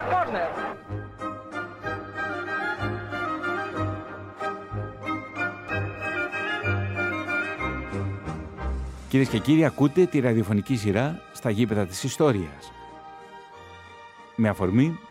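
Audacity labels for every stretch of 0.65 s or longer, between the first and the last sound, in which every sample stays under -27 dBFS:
12.460000	14.390000	silence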